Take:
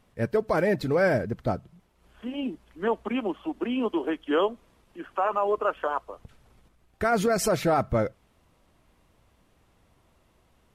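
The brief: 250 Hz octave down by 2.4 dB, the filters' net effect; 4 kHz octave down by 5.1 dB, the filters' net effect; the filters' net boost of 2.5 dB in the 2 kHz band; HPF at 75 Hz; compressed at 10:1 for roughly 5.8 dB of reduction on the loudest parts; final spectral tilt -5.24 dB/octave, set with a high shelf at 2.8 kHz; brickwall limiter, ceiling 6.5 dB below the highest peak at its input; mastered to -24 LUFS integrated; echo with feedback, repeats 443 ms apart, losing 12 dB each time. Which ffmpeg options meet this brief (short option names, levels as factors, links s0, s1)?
-af "highpass=75,equalizer=f=250:t=o:g=-3,equalizer=f=2000:t=o:g=7,highshelf=f=2800:g=-7.5,equalizer=f=4000:t=o:g=-4,acompressor=threshold=0.0562:ratio=10,alimiter=limit=0.075:level=0:latency=1,aecho=1:1:443|886|1329:0.251|0.0628|0.0157,volume=2.99"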